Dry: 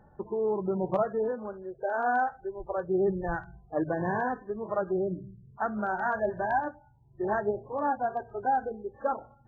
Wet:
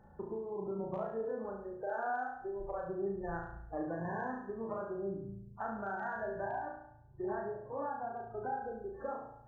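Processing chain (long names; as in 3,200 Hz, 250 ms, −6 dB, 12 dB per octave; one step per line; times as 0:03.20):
downward compressor, threshold −34 dBFS, peak gain reduction 11.5 dB
0:06.45–0:08.62: high-frequency loss of the air 250 metres
on a send: flutter between parallel walls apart 6.1 metres, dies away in 0.7 s
on the sum: level −4 dB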